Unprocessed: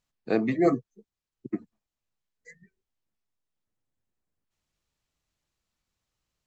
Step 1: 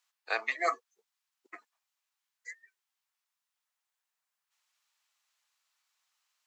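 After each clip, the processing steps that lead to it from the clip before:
high-pass filter 880 Hz 24 dB per octave
level +6 dB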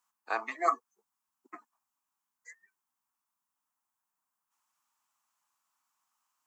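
octave-band graphic EQ 250/500/1,000/2,000/4,000 Hz +11/−9/+9/−8/−11 dB
level +1.5 dB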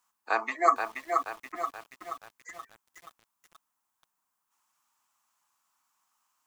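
feedback echo at a low word length 478 ms, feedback 55%, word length 9 bits, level −5 dB
level +5 dB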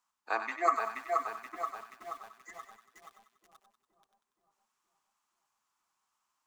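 running median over 3 samples
echo with a time of its own for lows and highs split 930 Hz, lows 473 ms, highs 95 ms, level −8 dB
level −5 dB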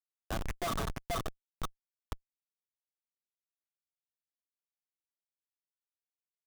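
comparator with hysteresis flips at −30 dBFS
level +6.5 dB

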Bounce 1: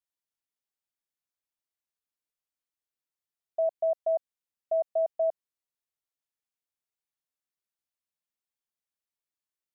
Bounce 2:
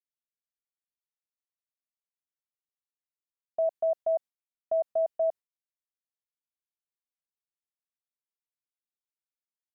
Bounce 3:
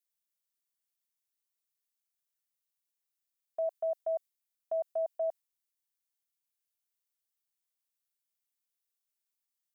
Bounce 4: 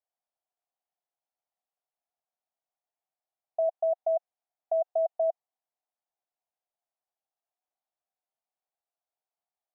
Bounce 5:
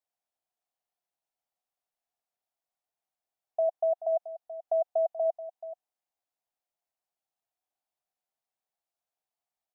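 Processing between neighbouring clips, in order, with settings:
noise gate with hold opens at −37 dBFS
spectral tilt +3.5 dB per octave; level −3.5 dB
in parallel at 0 dB: compressor whose output falls as the input rises −38 dBFS, ratio −1; on the sum: resonant band-pass 720 Hz, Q 5.3; level +6 dB
single-tap delay 431 ms −14 dB

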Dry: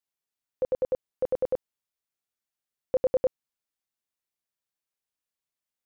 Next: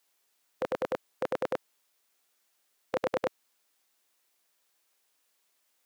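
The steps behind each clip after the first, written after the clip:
high-pass filter 310 Hz 12 dB per octave
every bin compressed towards the loudest bin 2 to 1
level +4 dB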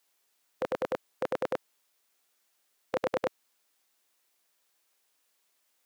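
no processing that can be heard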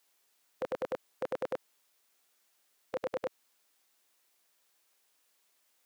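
brickwall limiter −23.5 dBFS, peak gain reduction 9 dB
level +1 dB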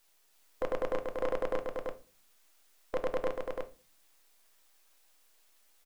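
gain on one half-wave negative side −7 dB
single-tap delay 337 ms −4.5 dB
rectangular room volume 220 cubic metres, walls furnished, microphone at 0.56 metres
level +5 dB

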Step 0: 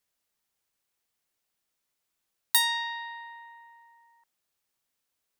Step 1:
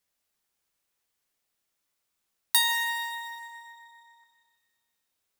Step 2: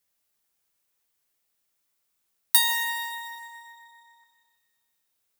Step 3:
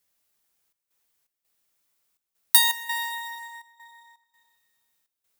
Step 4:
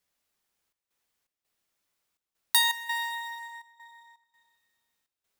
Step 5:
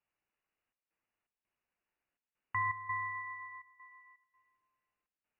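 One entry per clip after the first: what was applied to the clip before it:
reverb with rising layers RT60 1.5 s, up +12 semitones, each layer −8 dB, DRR 4.5 dB
high-shelf EQ 9,900 Hz +7 dB
gate pattern "xxxx.xx." 83 BPM −12 dB; level +2.5 dB
high-shelf EQ 7,700 Hz −9 dB; level −1 dB
voice inversion scrambler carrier 2,900 Hz; level −5 dB

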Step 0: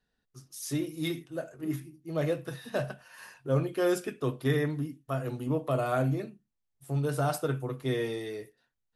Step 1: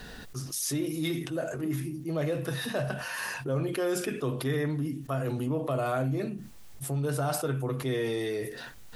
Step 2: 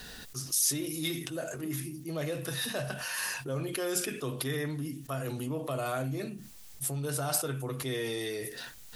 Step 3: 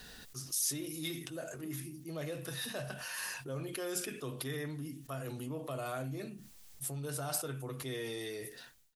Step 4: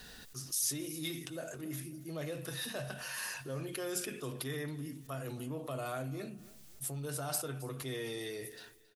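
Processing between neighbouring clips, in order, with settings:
envelope flattener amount 70%; level −4 dB
high-shelf EQ 2,600 Hz +11.5 dB; level −5 dB
fade-out on the ending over 0.52 s; level −6 dB
repeating echo 273 ms, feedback 32%, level −20 dB

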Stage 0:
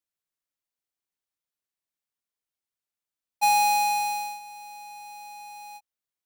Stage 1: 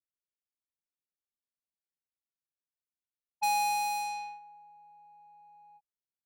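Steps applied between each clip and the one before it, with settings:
low-pass that shuts in the quiet parts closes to 420 Hz, open at −23 dBFS
level −7.5 dB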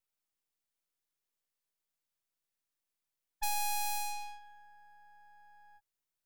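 downward compressor, threshold −31 dBFS, peak gain reduction 4 dB
high-shelf EQ 5,800 Hz +11.5 dB
half-wave rectification
level +1 dB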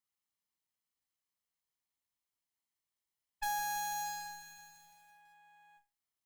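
lower of the sound and its delayed copy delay 0.98 ms
on a send: flutter between parallel walls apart 5.2 metres, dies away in 0.24 s
on the sum: feedback echo at a low word length 166 ms, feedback 80%, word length 10 bits, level −11 dB
level +1 dB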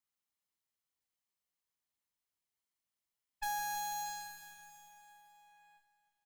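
repeating echo 317 ms, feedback 53%, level −14 dB
level −1.5 dB

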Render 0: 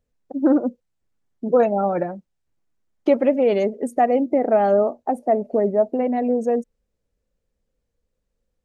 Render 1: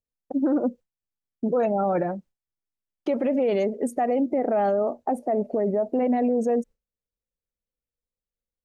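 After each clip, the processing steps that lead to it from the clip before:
noise gate with hold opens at −45 dBFS
brickwall limiter −18 dBFS, peak gain reduction 12 dB
level +2 dB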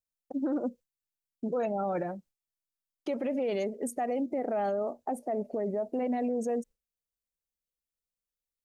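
high-shelf EQ 3,500 Hz +10.5 dB
level −8 dB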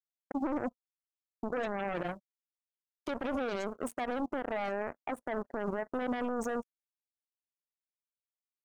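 brickwall limiter −31 dBFS, peak gain reduction 7.5 dB
power curve on the samples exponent 3
level +7 dB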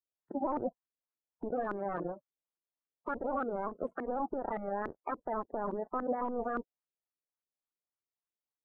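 spectral magnitudes quantised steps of 30 dB
auto-filter low-pass saw up 3.5 Hz 320–1,500 Hz
level −2.5 dB

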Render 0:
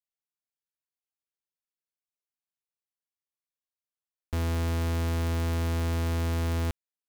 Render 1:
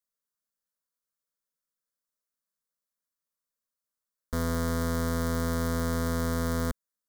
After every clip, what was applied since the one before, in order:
phaser with its sweep stopped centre 520 Hz, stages 8
level +6 dB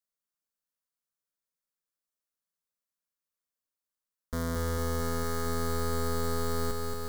feedback echo at a low word length 226 ms, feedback 80%, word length 9 bits, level −4 dB
level −3 dB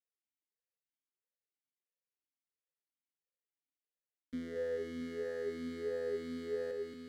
formant filter swept between two vowels e-i 1.5 Hz
level +4 dB

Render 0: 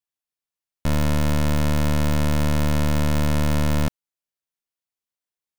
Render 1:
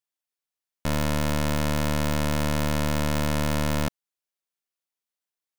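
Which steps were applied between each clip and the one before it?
low-shelf EQ 210 Hz −7.5 dB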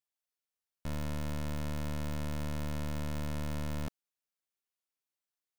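hard clipping −30.5 dBFS, distortion −8 dB
level −4 dB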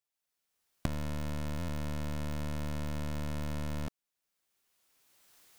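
camcorder AGC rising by 20 dB per second
buffer that repeats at 0:01.58, samples 512, times 8
highs frequency-modulated by the lows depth 0.41 ms

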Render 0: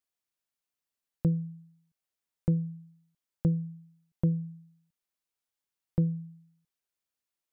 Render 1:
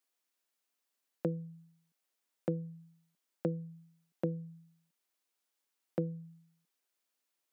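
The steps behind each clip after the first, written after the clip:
high-pass filter 220 Hz 24 dB per octave
dynamic equaliser 660 Hz, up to +7 dB, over −52 dBFS, Q 0.72
downward compressor 1.5 to 1, threshold −44 dBFS, peak gain reduction 6.5 dB
level +4.5 dB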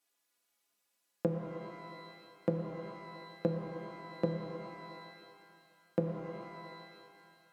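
stiff-string resonator 61 Hz, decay 0.24 s, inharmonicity 0.03
treble cut that deepens with the level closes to 1,300 Hz, closed at −46 dBFS
reverb with rising layers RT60 2.3 s, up +12 semitones, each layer −8 dB, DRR 3 dB
level +10.5 dB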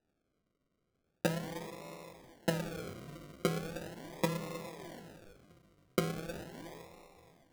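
sample-and-hold swept by an LFO 40×, swing 60% 0.39 Hz

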